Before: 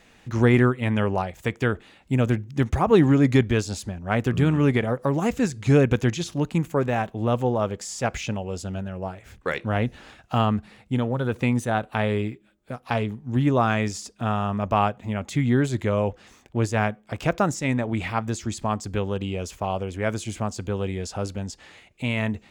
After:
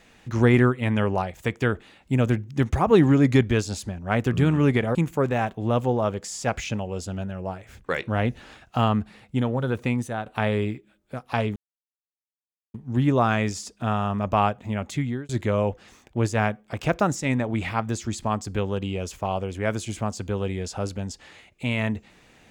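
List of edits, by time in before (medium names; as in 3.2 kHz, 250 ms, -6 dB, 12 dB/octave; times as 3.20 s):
4.95–6.52 s: delete
11.25–11.83 s: fade out, to -8 dB
13.13 s: insert silence 1.18 s
15.27–15.68 s: fade out linear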